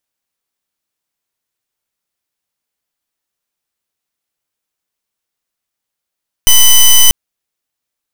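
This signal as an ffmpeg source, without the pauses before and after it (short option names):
-f lavfi -i "aevalsrc='0.596*(2*lt(mod(3010*t,1),0.12)-1)':d=0.64:s=44100"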